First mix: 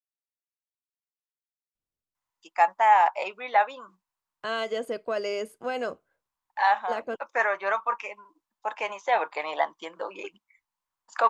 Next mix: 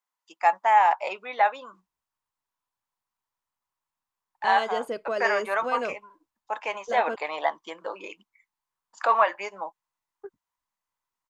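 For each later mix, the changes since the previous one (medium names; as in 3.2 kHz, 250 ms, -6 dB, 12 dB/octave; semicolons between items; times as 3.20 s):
first voice: entry -2.15 s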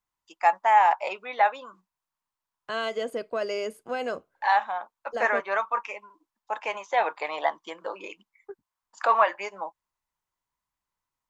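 second voice: entry -1.75 s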